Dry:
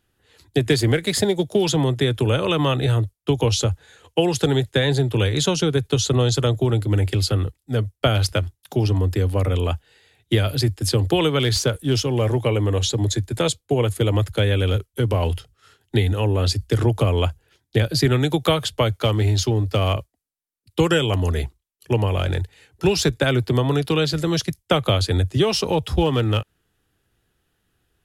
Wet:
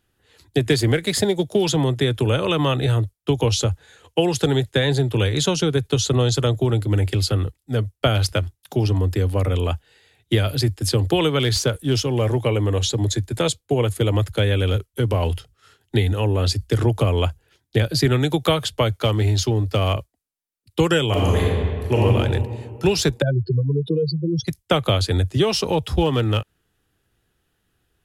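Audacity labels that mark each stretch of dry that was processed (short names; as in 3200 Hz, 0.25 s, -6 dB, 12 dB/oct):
21.070000	22.020000	reverb throw, RT60 2 s, DRR -4 dB
23.220000	24.470000	spectral contrast raised exponent 3.7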